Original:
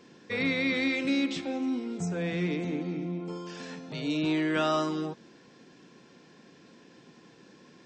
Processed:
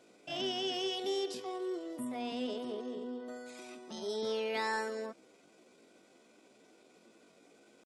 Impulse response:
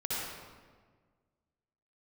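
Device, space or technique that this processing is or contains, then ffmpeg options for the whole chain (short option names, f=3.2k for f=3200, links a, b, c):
chipmunk voice: -af "asetrate=62367,aresample=44100,atempo=0.707107,volume=-7.5dB"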